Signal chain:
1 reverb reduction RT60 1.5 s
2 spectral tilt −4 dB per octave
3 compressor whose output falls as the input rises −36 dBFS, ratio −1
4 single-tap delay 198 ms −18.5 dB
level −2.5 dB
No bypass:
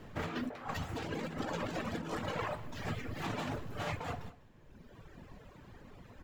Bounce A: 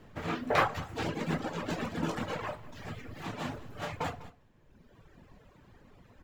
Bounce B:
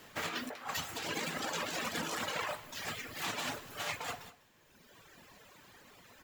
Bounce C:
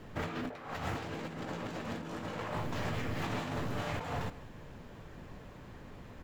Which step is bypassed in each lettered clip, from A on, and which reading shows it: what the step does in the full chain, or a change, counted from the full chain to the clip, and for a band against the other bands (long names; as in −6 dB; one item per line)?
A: 3, change in crest factor +7.0 dB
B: 2, 8 kHz band +13.0 dB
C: 1, change in momentary loudness spread −3 LU